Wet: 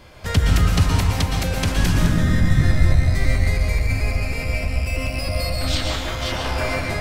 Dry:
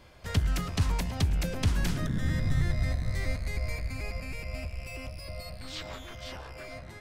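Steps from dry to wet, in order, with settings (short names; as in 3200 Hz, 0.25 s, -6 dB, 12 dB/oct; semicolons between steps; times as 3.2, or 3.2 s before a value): recorder AGC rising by 8.6 dB/s; 0.89–1.77 low shelf 210 Hz -8.5 dB; plate-style reverb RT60 1.5 s, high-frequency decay 0.65×, pre-delay 0.105 s, DRR 0 dB; gain +8.5 dB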